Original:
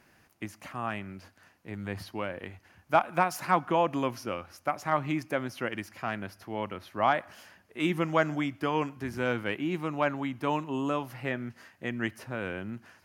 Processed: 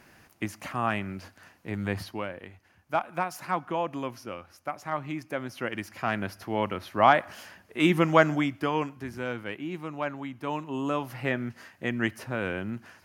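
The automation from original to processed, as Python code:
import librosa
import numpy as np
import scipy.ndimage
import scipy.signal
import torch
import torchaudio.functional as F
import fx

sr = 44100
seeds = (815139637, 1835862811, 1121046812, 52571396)

y = fx.gain(x, sr, db=fx.line((1.9, 6.0), (2.46, -4.0), (5.17, -4.0), (6.23, 6.0), (8.19, 6.0), (9.29, -4.0), (10.4, -4.0), (11.21, 4.0)))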